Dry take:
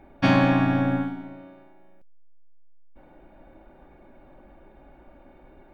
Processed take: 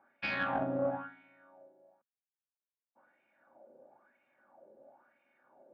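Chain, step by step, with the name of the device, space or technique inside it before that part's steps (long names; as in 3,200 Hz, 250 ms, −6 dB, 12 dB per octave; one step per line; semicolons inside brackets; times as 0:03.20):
wah-wah guitar rig (LFO wah 1 Hz 480–2,400 Hz, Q 4.8; tube saturation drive 26 dB, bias 0.7; loudspeaker in its box 84–4,300 Hz, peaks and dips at 130 Hz +8 dB, 230 Hz +10 dB, 560 Hz +5 dB, 1,500 Hz +3 dB, 2,100 Hz −4 dB)
level +2.5 dB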